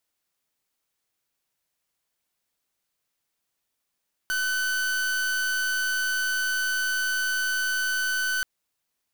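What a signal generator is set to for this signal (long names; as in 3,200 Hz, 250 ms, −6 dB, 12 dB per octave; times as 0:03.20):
pulse wave 1,510 Hz, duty 42% −26 dBFS 4.13 s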